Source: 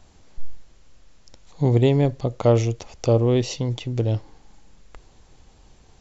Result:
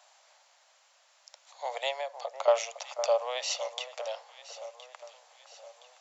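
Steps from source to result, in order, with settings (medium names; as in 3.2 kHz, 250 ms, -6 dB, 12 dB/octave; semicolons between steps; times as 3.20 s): steep high-pass 570 Hz 72 dB/octave; 1.90–2.48 s: compression, threshold -32 dBFS, peak gain reduction 11 dB; echo whose repeats swap between lows and highs 509 ms, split 1.6 kHz, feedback 65%, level -11 dB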